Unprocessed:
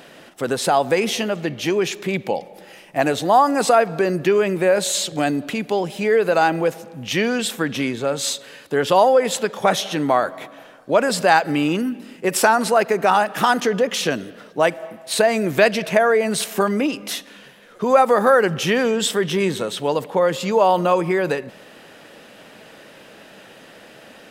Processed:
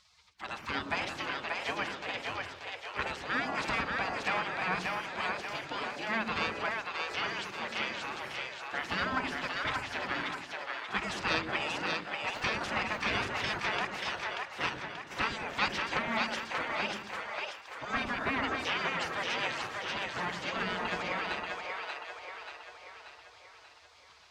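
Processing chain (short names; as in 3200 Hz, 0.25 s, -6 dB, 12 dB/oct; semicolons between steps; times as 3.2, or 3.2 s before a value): one diode to ground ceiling -12 dBFS; HPF 110 Hz 12 dB/oct; low shelf 140 Hz +8 dB; spectral gate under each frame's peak -20 dB weak; air absorption 160 m; split-band echo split 410 Hz, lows 0.107 s, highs 0.584 s, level -3 dB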